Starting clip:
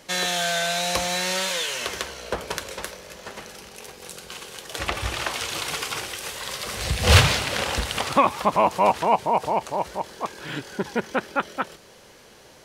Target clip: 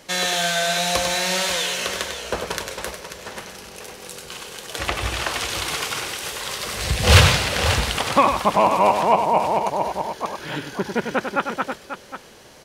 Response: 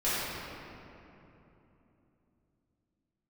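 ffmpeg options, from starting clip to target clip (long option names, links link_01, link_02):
-filter_complex "[0:a]asettb=1/sr,asplit=3[link_01][link_02][link_03];[link_01]atrim=end=9.554[link_04];[link_02]atrim=start=9.55:end=10.92,asetpts=PTS-STARTPTS,afade=type=in:duration=0.004:curve=qsin,afade=type=out:start_time=1.366:duration=0.004:curve=qsin,bandreject=frequency=7900:width=7.1[link_05];[link_03]atrim=start=10.916[link_06];[link_04][link_05]acrossfade=duration=0.004:curve1=hsin:curve2=qsin[link_07];[link_07][link_06]acrossfade=duration=0.004:curve1=qsin:curve2=hsin,aecho=1:1:98|539:0.447|0.316,volume=2dB"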